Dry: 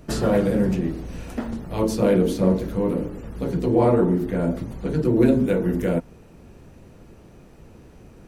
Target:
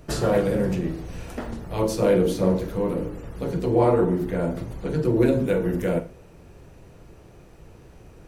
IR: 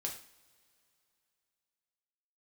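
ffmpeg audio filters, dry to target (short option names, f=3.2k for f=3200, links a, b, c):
-filter_complex "[0:a]equalizer=f=230:t=o:w=0.56:g=-8,asplit=2[a][b];[1:a]atrim=start_sample=2205,asetrate=52920,aresample=44100,adelay=44[c];[b][c]afir=irnorm=-1:irlink=0,volume=-10dB[d];[a][d]amix=inputs=2:normalize=0"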